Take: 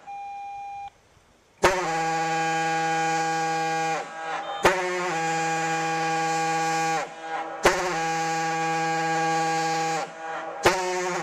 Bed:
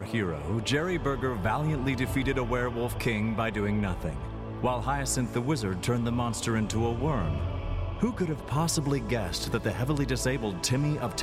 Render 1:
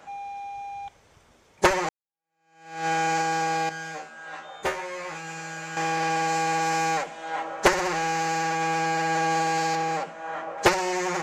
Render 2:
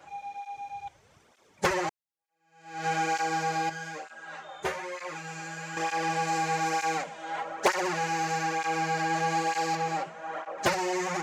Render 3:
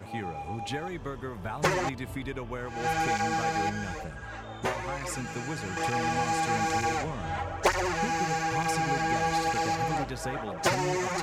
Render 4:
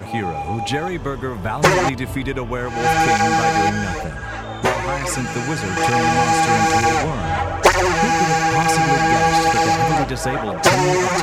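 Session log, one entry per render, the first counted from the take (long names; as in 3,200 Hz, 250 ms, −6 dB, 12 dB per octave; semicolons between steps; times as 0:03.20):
0:01.89–0:02.87: fade in exponential; 0:03.69–0:05.77: tuned comb filter 77 Hz, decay 0.25 s, mix 100%; 0:09.75–0:10.58: parametric band 9,700 Hz −7.5 dB 2.8 octaves
soft clipping −14 dBFS, distortion −18 dB; through-zero flanger with one copy inverted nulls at 1.1 Hz, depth 4.8 ms
mix in bed −8 dB
level +12 dB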